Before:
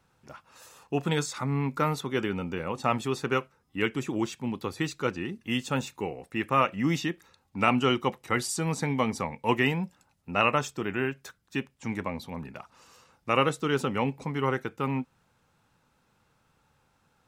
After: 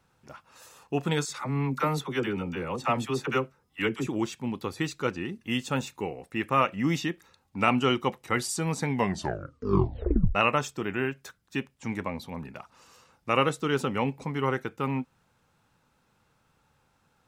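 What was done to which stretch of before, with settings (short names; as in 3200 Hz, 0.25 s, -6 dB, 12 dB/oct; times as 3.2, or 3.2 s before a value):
1.25–4.07 dispersion lows, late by 46 ms, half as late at 640 Hz
8.89 tape stop 1.46 s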